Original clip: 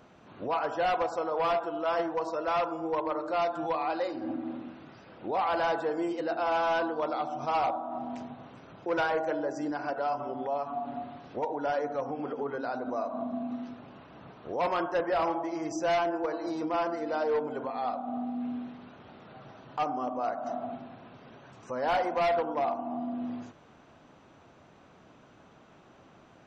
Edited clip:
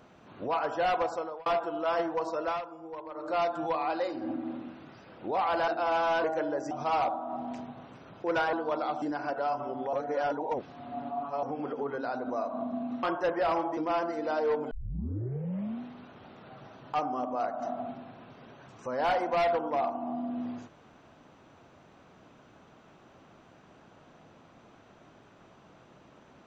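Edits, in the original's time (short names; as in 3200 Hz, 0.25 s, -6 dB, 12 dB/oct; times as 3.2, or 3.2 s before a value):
1.11–1.46 fade out
2.46–3.3 dip -11 dB, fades 0.16 s
5.68–6.28 cut
6.84–7.33 swap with 9.15–9.62
10.53–12.03 reverse
13.63–14.74 cut
15.48–16.61 cut
17.55 tape start 1.10 s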